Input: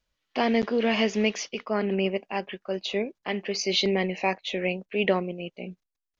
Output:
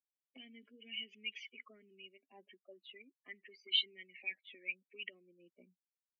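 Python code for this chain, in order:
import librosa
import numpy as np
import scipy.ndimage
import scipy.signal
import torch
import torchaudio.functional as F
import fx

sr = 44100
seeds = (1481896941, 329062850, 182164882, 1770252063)

y = fx.spec_expand(x, sr, power=2.3)
y = fx.vowel_filter(y, sr, vowel='i')
y = fx.auto_wah(y, sr, base_hz=500.0, top_hz=2900.0, q=5.7, full_db=-39.0, direction='up')
y = y * librosa.db_to_amplitude(12.0)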